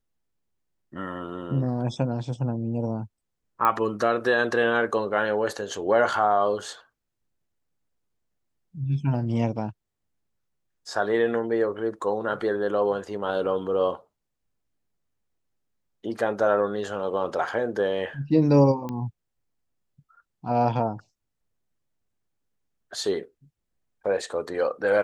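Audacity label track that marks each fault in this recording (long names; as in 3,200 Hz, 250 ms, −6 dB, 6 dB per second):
3.650000	3.650000	click −11 dBFS
18.890000	18.890000	click −20 dBFS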